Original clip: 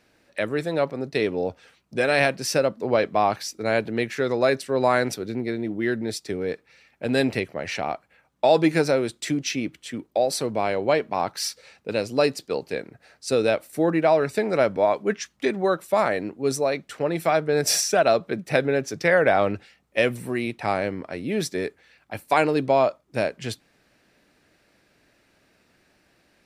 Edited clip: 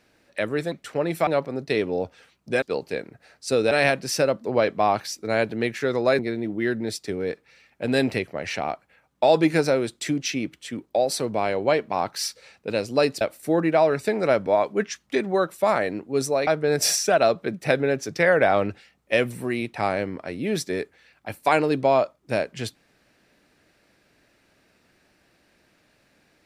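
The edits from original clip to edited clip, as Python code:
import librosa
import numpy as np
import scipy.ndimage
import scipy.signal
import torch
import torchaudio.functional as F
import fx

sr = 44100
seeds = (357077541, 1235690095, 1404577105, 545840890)

y = fx.edit(x, sr, fx.cut(start_s=4.55, length_s=0.85),
    fx.move(start_s=12.42, length_s=1.09, to_s=2.07),
    fx.move(start_s=16.77, length_s=0.55, to_s=0.72), tone=tone)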